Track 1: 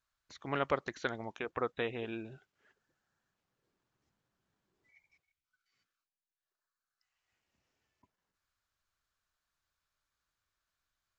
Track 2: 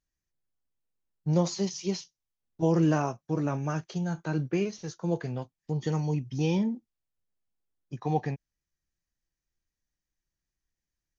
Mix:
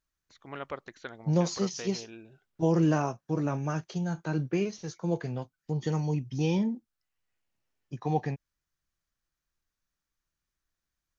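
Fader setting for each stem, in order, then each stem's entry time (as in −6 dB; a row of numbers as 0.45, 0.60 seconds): −6.0, −0.5 decibels; 0.00, 0.00 seconds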